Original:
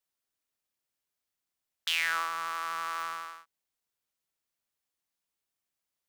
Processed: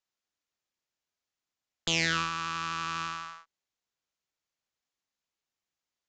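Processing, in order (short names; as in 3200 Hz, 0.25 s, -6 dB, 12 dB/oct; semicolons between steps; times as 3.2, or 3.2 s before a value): added harmonics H 4 -10 dB, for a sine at -13.5 dBFS; downsampling 16000 Hz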